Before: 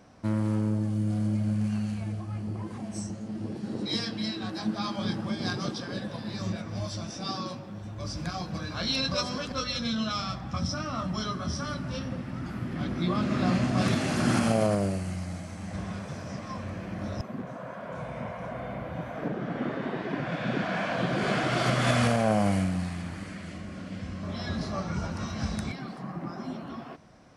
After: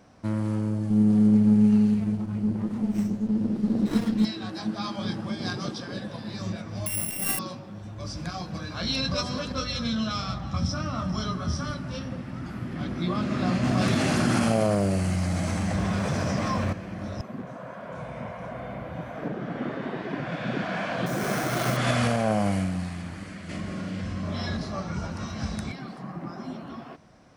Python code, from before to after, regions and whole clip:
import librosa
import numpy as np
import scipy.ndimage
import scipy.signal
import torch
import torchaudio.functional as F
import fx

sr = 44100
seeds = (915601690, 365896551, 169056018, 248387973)

y = fx.chain(x, sr, fx.peak_eq(hz=220.0, db=12.5, octaves=0.65),
    fx.running_max(window=17), at=(0.9, 4.25))
y = fx.chain(y, sr, fx.sample_sort(block=16),
    fx.peak_eq(hz=2100.0, db=6.0, octaves=0.22),
    fx.resample_bad(factor=4, down='none', up='zero_stuff'), at=(6.86, 7.39))
y = fx.chain(y, sr, fx.highpass(hz=42.0, slope=12),
    fx.low_shelf(hz=130.0, db=8.5),
    fx.echo_alternate(ms=217, hz=1700.0, feedback_pct=53, wet_db=-11.0), at=(8.82, 11.71))
y = fx.chain(y, sr, fx.quant_float(bits=6),
    fx.env_flatten(amount_pct=70), at=(13.63, 16.73))
y = fx.chain(y, sr, fx.peak_eq(hz=2900.0, db=-8.0, octaves=0.22),
    fx.sample_hold(seeds[0], rate_hz=7500.0, jitter_pct=0), at=(21.06, 21.77))
y = fx.chain(y, sr, fx.doubler(ms=42.0, db=-4.0),
    fx.env_flatten(amount_pct=50), at=(23.49, 24.57))